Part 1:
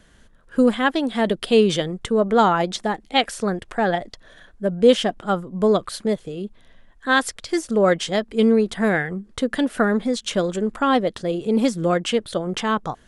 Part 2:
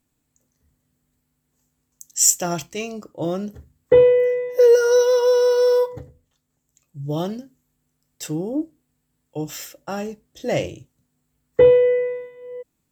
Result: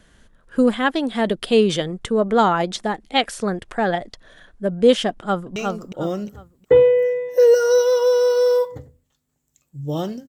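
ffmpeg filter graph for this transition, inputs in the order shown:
-filter_complex "[0:a]apad=whole_dur=10.28,atrim=end=10.28,atrim=end=5.562[a];[1:a]atrim=start=2.768:end=7.49[b];[a][b]acrossfade=d=0.004:c1=hsin:c2=hsin,asplit=2[c][d];[d]afade=t=in:st=5.1:d=0.01,afade=t=out:st=5.56:d=0.01,aecho=0:1:360|720|1080|1440:0.668344|0.200503|0.060151|0.0180453[e];[c][e]amix=inputs=2:normalize=0"

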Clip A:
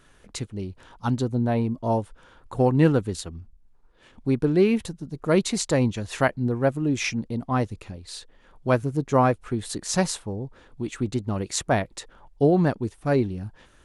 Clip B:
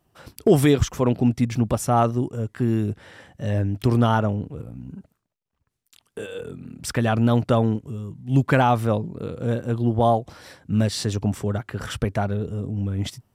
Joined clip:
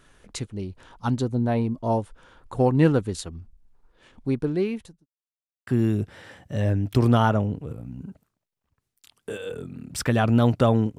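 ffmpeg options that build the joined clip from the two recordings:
-filter_complex "[0:a]apad=whole_dur=10.98,atrim=end=10.98,asplit=2[a][b];[a]atrim=end=5.06,asetpts=PTS-STARTPTS,afade=t=out:st=3.78:d=1.28:c=qsin[c];[b]atrim=start=5.06:end=5.67,asetpts=PTS-STARTPTS,volume=0[d];[1:a]atrim=start=2.56:end=7.87,asetpts=PTS-STARTPTS,afade=t=in:d=0.004:c=hsin[e];[c][d][e]concat=n=3:v=0:a=1"

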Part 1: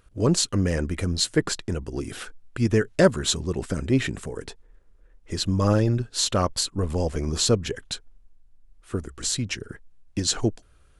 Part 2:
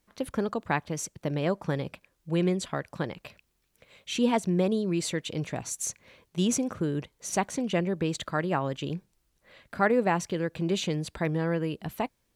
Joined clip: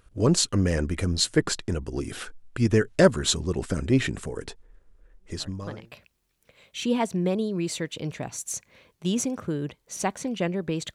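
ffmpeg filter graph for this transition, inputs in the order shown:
-filter_complex "[0:a]apad=whole_dur=10.94,atrim=end=10.94,atrim=end=5.98,asetpts=PTS-STARTPTS[a];[1:a]atrim=start=2.49:end=8.27,asetpts=PTS-STARTPTS[b];[a][b]acrossfade=d=0.82:c1=qua:c2=qua"

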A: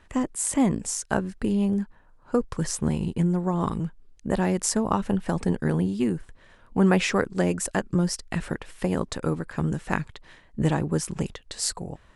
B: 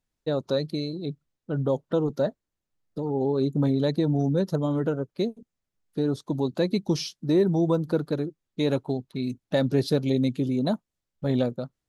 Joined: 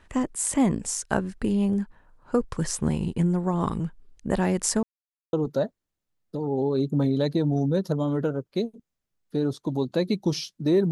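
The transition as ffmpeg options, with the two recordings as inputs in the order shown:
-filter_complex "[0:a]apad=whole_dur=10.91,atrim=end=10.91,asplit=2[a][b];[a]atrim=end=4.83,asetpts=PTS-STARTPTS,afade=t=out:st=4.826:d=0.004:c=hsin[c];[b]atrim=start=4.83:end=5.33,asetpts=PTS-STARTPTS,volume=0[d];[1:a]atrim=start=1.96:end=7.54,asetpts=PTS-STARTPTS,afade=t=in:d=0.004:c=hsin[e];[c][d][e]concat=n=3:v=0:a=1"

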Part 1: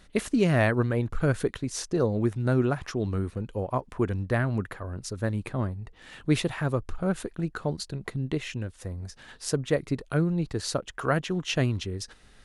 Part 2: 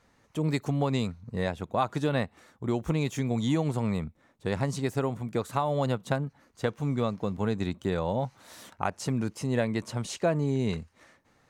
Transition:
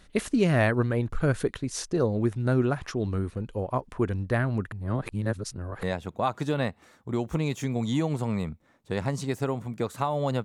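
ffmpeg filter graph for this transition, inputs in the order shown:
-filter_complex "[0:a]apad=whole_dur=10.44,atrim=end=10.44,asplit=2[a][b];[a]atrim=end=4.722[c];[b]atrim=start=4.718:end=5.832,asetpts=PTS-STARTPTS,areverse[d];[1:a]atrim=start=1.378:end=5.99[e];[c][d]acrossfade=d=0.004:c1=hsin:c2=hsin[f];[f][e]acrossfade=d=0.004:c1=hsin:c2=hsin"

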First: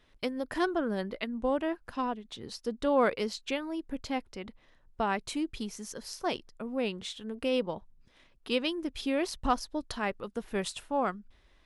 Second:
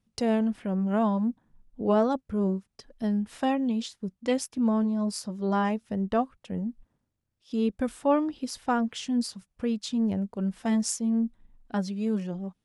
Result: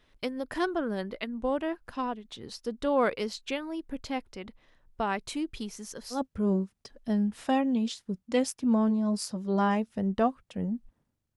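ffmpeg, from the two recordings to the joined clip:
-filter_complex "[0:a]apad=whole_dur=11.36,atrim=end=11.36,atrim=end=6.22,asetpts=PTS-STARTPTS[a];[1:a]atrim=start=2.04:end=7.3,asetpts=PTS-STARTPTS[b];[a][b]acrossfade=d=0.12:c1=tri:c2=tri"

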